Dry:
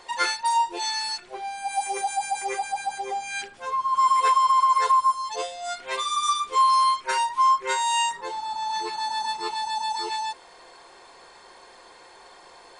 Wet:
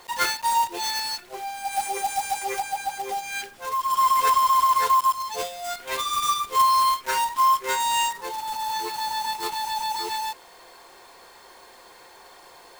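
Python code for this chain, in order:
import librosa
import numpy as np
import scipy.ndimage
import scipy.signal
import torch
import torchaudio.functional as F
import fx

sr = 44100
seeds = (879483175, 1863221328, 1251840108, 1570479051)

y = fx.block_float(x, sr, bits=3)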